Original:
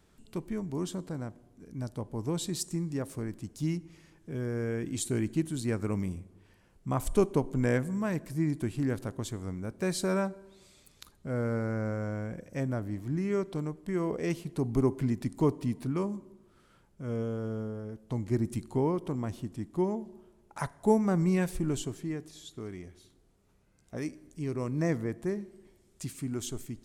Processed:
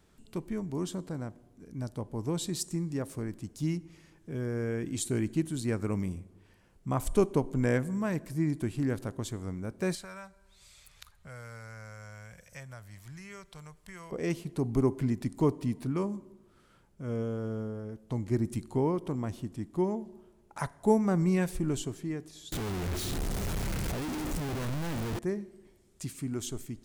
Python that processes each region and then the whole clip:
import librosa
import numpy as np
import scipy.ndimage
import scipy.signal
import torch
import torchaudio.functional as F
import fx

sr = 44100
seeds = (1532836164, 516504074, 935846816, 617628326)

y = fx.chain(x, sr, fx.tone_stack(knobs='10-0-10'),
    fx.band_squash(depth_pct=70), at=(9.95, 14.12))
y = fx.chain(y, sr, fx.clip_1bit(),
    fx.low_shelf(hz=150.0, db=7.5), at=(22.52, 25.19))